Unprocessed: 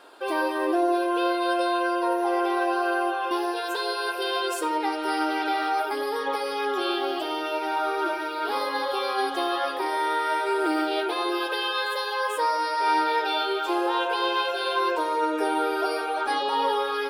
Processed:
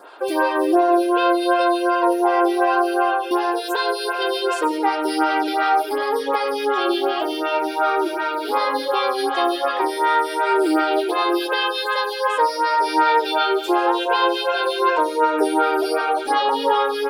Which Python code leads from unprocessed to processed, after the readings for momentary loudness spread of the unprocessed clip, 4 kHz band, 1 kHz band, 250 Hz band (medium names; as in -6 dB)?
4 LU, +4.0 dB, +6.0 dB, +6.5 dB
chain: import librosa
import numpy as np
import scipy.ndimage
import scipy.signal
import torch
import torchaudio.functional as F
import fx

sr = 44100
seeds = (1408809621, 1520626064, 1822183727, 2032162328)

y = fx.stagger_phaser(x, sr, hz=2.7)
y = y * 10.0 ** (9.0 / 20.0)